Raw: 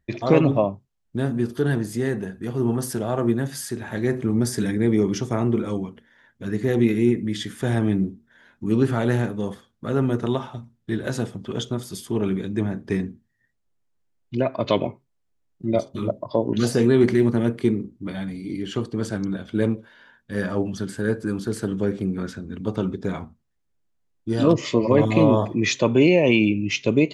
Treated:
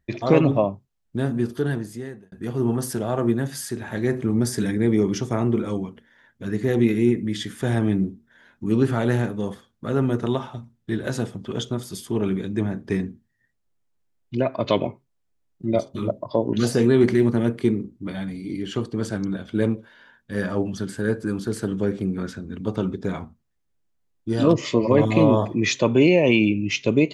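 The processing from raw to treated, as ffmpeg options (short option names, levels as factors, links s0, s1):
-filter_complex "[0:a]asplit=2[s0][s1];[s0]atrim=end=2.32,asetpts=PTS-STARTPTS,afade=t=out:st=1.47:d=0.85[s2];[s1]atrim=start=2.32,asetpts=PTS-STARTPTS,afade=t=in:d=0.004:c=hsin[s3];[s2][s3]concat=n=2:v=0:a=1"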